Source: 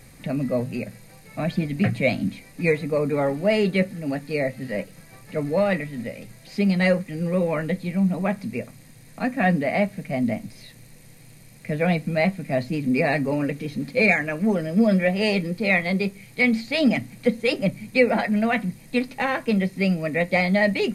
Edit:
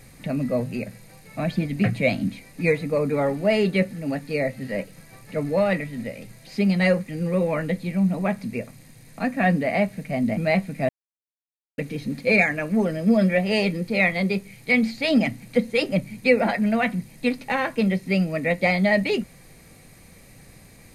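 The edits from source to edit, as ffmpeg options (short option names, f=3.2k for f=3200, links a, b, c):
-filter_complex "[0:a]asplit=4[a][b][c][d];[a]atrim=end=10.372[e];[b]atrim=start=12.068:end=12.59,asetpts=PTS-STARTPTS,afade=t=out:st=0.518:d=0.004:c=hsin[f];[c]atrim=start=12.59:end=13.48,asetpts=PTS-STARTPTS,volume=0[g];[d]atrim=start=13.48,asetpts=PTS-STARTPTS,afade=t=in:d=0.004:c=hsin[h];[f][g][h]concat=n=3:v=0:a=1[i];[e][i]acrossfade=d=0.004:c1=hsin:c2=hsin"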